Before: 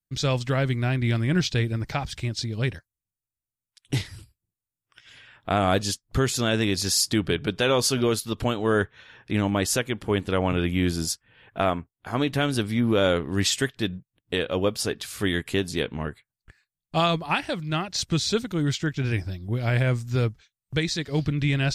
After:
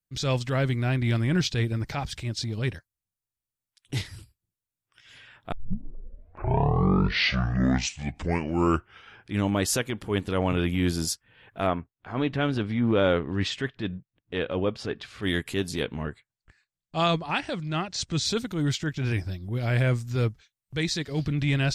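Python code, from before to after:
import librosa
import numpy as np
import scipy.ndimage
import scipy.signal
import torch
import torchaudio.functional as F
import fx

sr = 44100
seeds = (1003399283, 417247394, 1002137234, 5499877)

y = fx.lowpass(x, sr, hz=3000.0, slope=12, at=(11.67, 15.23))
y = fx.cheby1_lowpass(y, sr, hz=7900.0, order=3, at=(16.01, 18.25))
y = fx.edit(y, sr, fx.tape_start(start_s=5.52, length_s=3.95), tone=tone)
y = fx.transient(y, sr, attack_db=-7, sustain_db=-1)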